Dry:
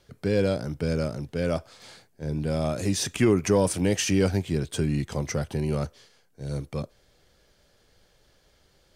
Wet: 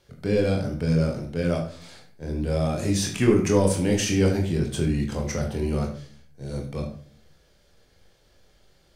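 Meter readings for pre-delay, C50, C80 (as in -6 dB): 23 ms, 7.5 dB, 12.0 dB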